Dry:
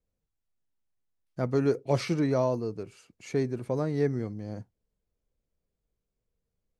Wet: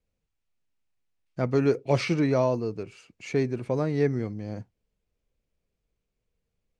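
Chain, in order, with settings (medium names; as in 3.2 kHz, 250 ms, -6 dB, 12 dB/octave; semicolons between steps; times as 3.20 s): low-pass 7.8 kHz 12 dB/octave; peaking EQ 2.5 kHz +6 dB 0.6 oct; trim +2.5 dB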